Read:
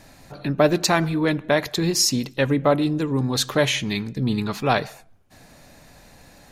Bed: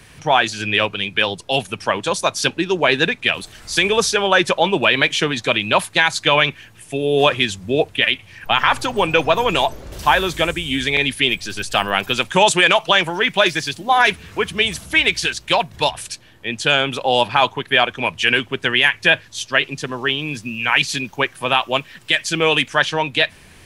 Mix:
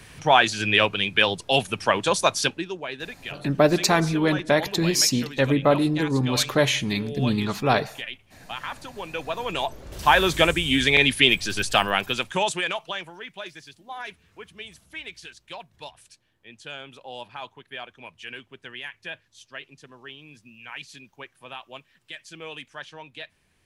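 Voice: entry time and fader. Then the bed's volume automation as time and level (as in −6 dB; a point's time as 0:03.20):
3.00 s, −0.5 dB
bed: 0:02.35 −1.5 dB
0:02.86 −18 dB
0:09.03 −18 dB
0:10.28 0 dB
0:11.63 0 dB
0:13.31 −22 dB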